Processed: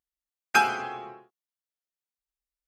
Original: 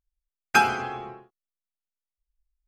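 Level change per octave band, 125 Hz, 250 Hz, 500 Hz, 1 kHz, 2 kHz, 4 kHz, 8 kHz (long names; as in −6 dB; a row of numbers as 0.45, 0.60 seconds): −9.0, −5.0, −3.0, −2.0, −1.5, −1.5, −1.5 decibels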